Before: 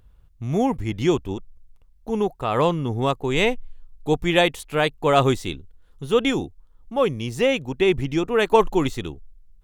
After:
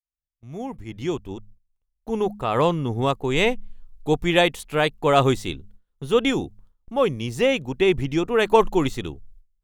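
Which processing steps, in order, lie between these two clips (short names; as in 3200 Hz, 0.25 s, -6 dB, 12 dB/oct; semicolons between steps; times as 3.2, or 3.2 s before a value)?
opening faded in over 2.31 s; de-hum 103.5 Hz, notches 2; gate with hold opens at -38 dBFS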